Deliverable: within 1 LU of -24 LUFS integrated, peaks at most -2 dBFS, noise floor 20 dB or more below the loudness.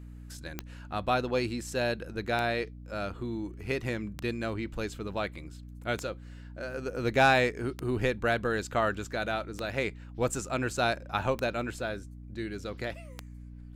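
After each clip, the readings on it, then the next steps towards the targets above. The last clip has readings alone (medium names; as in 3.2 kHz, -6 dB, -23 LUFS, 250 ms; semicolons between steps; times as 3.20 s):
clicks found 8; hum 60 Hz; highest harmonic 300 Hz; hum level -43 dBFS; loudness -31.5 LUFS; peak level -11.0 dBFS; loudness target -24.0 LUFS
-> de-click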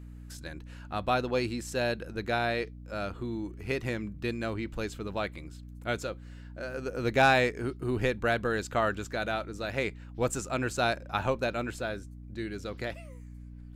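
clicks found 0; hum 60 Hz; highest harmonic 300 Hz; hum level -43 dBFS
-> de-hum 60 Hz, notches 5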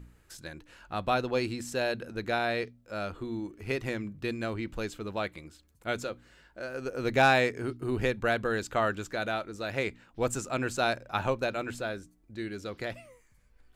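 hum not found; loudness -31.5 LUFS; peak level -11.0 dBFS; loudness target -24.0 LUFS
-> trim +7.5 dB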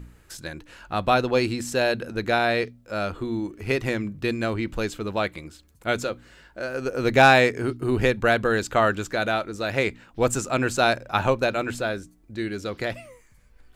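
loudness -24.0 LUFS; peak level -3.5 dBFS; noise floor -56 dBFS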